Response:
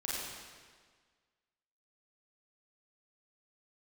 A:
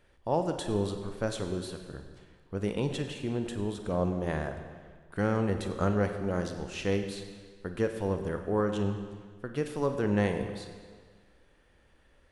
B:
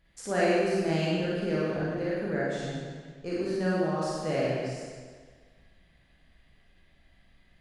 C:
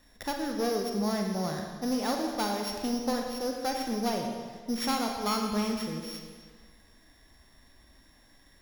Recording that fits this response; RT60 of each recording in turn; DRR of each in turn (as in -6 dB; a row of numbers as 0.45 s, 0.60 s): B; 1.6 s, 1.6 s, 1.6 s; 6.0 dB, -7.5 dB, 1.5 dB